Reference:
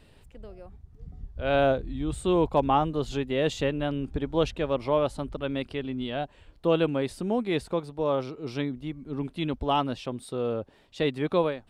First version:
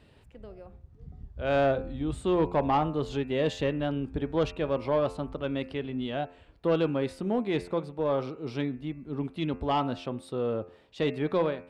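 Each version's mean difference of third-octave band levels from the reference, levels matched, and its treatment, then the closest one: 2.0 dB: high-pass 50 Hz; treble shelf 5.8 kHz -10.5 dB; de-hum 88.04 Hz, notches 31; saturation -16.5 dBFS, distortion -19 dB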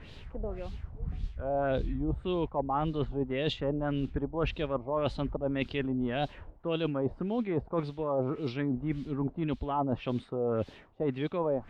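6.0 dB: word length cut 10-bit, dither triangular; bass shelf 370 Hz +5.5 dB; LFO low-pass sine 1.8 Hz 700–3900 Hz; reverse; compression 12:1, threshold -30 dBFS, peak gain reduction 19 dB; reverse; trim +3 dB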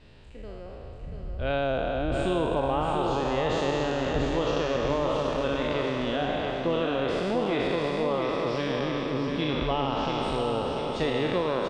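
10.0 dB: spectral sustain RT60 2.89 s; low-pass 6.5 kHz 24 dB/octave; compression, threshold -24 dBFS, peak gain reduction 9.5 dB; feedback delay 688 ms, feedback 54%, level -5.5 dB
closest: first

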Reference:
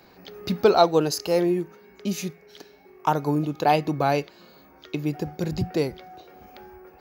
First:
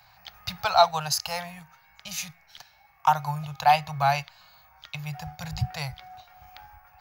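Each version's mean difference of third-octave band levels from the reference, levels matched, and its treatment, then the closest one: 7.5 dB: Chebyshev band-stop 130–750 Hz, order 3; in parallel at -7.5 dB: hysteresis with a dead band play -38.5 dBFS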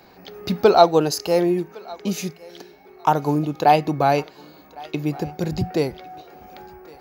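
1.5 dB: peaking EQ 760 Hz +3.5 dB 0.53 oct; on a send: thinning echo 1108 ms, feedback 18%, high-pass 530 Hz, level -21 dB; on the sum: trim +2.5 dB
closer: second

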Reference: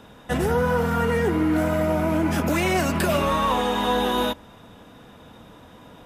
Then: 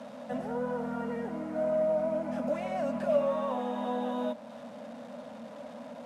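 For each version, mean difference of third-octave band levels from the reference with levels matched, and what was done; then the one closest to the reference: 9.0 dB: one-bit delta coder 64 kbps, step -31.5 dBFS; in parallel at -2 dB: compression, threshold -35 dBFS, peak gain reduction 16 dB; on the sum: two resonant band-passes 370 Hz, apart 1.3 oct; tilt EQ +3 dB/octave; trim +2 dB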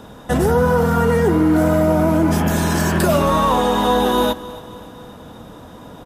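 2.0 dB: spectral replace 2.37–2.95 s, 220–3400 Hz both; peaking EQ 2.4 kHz -8 dB 1.1 oct; in parallel at -0.5 dB: peak limiter -19.5 dBFS, peak gain reduction 8.5 dB; on the sum: feedback delay 273 ms, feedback 55%, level -18.5 dB; trim +3 dB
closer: second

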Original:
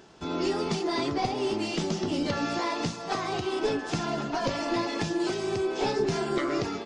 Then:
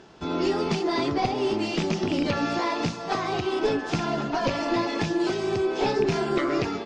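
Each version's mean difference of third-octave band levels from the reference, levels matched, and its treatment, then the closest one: 1.0 dB: rattle on loud lows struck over -29 dBFS, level -23 dBFS; distance through air 69 m; trim +3.5 dB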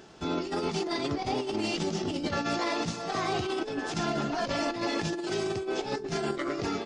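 3.0 dB: band-stop 990 Hz, Q 15; compressor with a negative ratio -30 dBFS, ratio -0.5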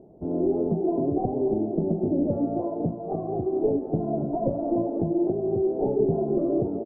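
14.5 dB: elliptic low-pass 670 Hz, stop band 80 dB; on a send: delay 282 ms -12 dB; on the sum: trim +5 dB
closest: first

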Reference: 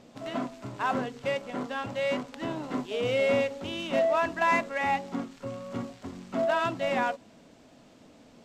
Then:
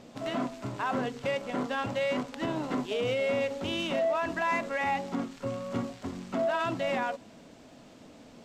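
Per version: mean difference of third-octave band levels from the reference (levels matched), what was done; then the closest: 3.0 dB: peak limiter -24.5 dBFS, peak gain reduction 8 dB; trim +3 dB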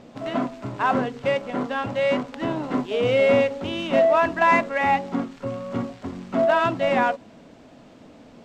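2.0 dB: treble shelf 4.6 kHz -10.5 dB; trim +7.5 dB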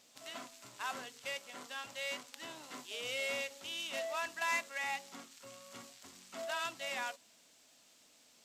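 9.5 dB: pre-emphasis filter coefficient 0.97; trim +4.5 dB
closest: second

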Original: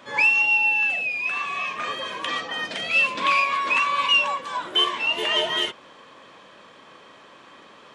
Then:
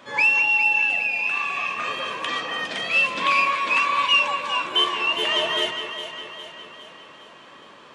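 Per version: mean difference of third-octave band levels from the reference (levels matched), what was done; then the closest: 2.0 dB: echo whose repeats swap between lows and highs 204 ms, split 2.1 kHz, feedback 72%, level -6 dB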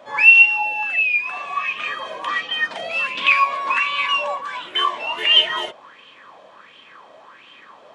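5.5 dB: sweeping bell 1.4 Hz 630–3000 Hz +17 dB; trim -5 dB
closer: first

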